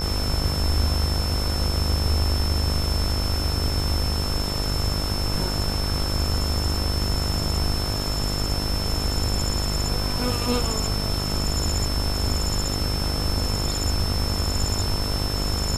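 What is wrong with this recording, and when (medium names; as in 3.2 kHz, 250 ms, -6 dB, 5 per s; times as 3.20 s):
buzz 50 Hz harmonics 30 -28 dBFS
whine 5.3 kHz -29 dBFS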